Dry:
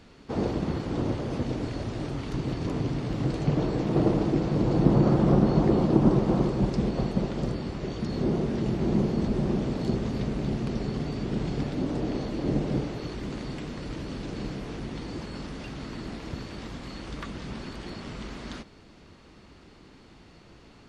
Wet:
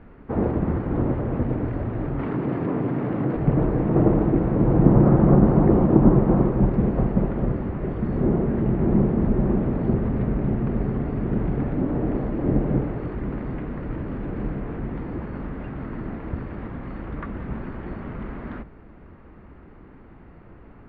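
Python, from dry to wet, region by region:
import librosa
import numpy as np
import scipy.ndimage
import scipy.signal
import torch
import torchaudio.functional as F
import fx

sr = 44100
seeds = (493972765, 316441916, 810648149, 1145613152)

y = fx.chain(x, sr, fx.highpass(hz=180.0, slope=12),
    fx.env_flatten(amount_pct=50), at=(2.19, 3.36))
y = scipy.signal.sosfilt(scipy.signal.butter(4, 1900.0, 'lowpass', fs=sr, output='sos'), y)
y = fx.low_shelf(y, sr, hz=90.0, db=8.5)
y = fx.hum_notches(y, sr, base_hz=50, count=3)
y = y * 10.0 ** (4.0 / 20.0)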